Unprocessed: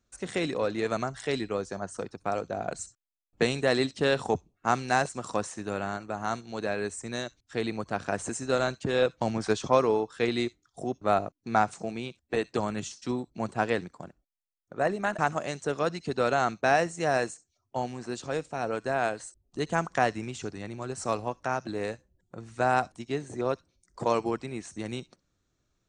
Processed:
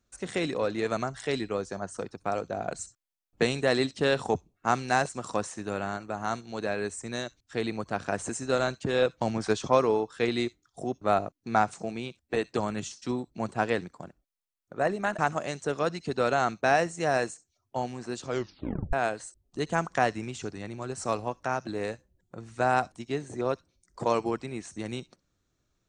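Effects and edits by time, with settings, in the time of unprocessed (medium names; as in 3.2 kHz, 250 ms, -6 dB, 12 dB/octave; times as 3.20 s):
18.26 s: tape stop 0.67 s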